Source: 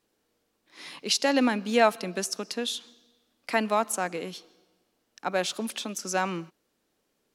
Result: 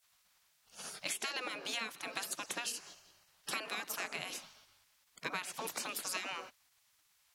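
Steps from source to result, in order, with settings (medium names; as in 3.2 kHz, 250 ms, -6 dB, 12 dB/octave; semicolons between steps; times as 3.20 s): spectral gate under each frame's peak -15 dB weak; compression 16:1, threshold -43 dBFS, peak gain reduction 18 dB; trim +8 dB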